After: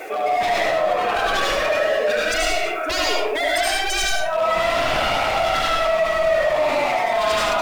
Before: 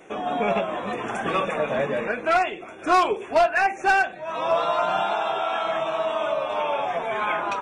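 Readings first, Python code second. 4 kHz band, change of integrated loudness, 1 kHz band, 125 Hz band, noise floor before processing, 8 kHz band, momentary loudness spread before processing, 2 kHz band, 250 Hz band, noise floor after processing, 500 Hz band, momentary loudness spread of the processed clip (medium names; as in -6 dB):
+11.5 dB, +4.0 dB, +1.5 dB, +2.5 dB, -39 dBFS, +16.5 dB, 7 LU, +4.5 dB, -1.0 dB, -24 dBFS, +5.0 dB, 2 LU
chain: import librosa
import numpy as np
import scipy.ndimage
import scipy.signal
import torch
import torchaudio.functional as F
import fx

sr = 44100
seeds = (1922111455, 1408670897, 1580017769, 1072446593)

p1 = fx.spec_expand(x, sr, power=1.8)
p2 = scipy.signal.sosfilt(scipy.signal.butter(2, 790.0, 'highpass', fs=sr, output='sos'), p1)
p3 = fx.peak_eq(p2, sr, hz=1000.0, db=-5.0, octaves=0.66)
p4 = fx.notch(p3, sr, hz=1000.0, q=26.0)
p5 = fx.rider(p4, sr, range_db=5, speed_s=0.5)
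p6 = p4 + F.gain(torch.from_numpy(p5), 0.0).numpy()
p7 = fx.quant_dither(p6, sr, seeds[0], bits=10, dither='none')
p8 = 10.0 ** (-23.5 / 20.0) * (np.abs((p7 / 10.0 ** (-23.5 / 20.0) + 3.0) % 4.0 - 2.0) - 1.0)
p9 = fx.vibrato(p8, sr, rate_hz=15.0, depth_cents=6.1)
p10 = p9 + fx.echo_single(p9, sr, ms=74, db=-4.0, dry=0)
p11 = fx.rev_freeverb(p10, sr, rt60_s=0.45, hf_ratio=0.7, predelay_ms=60, drr_db=-3.5)
p12 = fx.env_flatten(p11, sr, amount_pct=50)
y = F.gain(torch.from_numpy(p12), -2.0).numpy()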